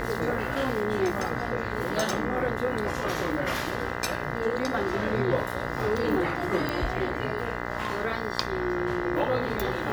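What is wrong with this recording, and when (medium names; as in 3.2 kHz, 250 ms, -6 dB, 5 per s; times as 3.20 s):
buzz 60 Hz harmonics 34 -33 dBFS
6.69 s: pop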